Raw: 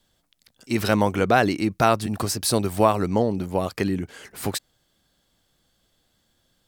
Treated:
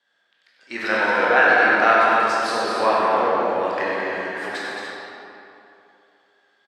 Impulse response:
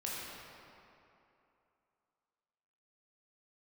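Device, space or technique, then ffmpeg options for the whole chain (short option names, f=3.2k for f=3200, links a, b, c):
station announcement: -filter_complex "[0:a]highpass=490,lowpass=4.1k,equalizer=f=1.7k:t=o:w=0.49:g=12,aecho=1:1:96.21|221.6|285.7:0.355|0.501|0.398[a];[1:a]atrim=start_sample=2205[b];[a][b]afir=irnorm=-1:irlink=0"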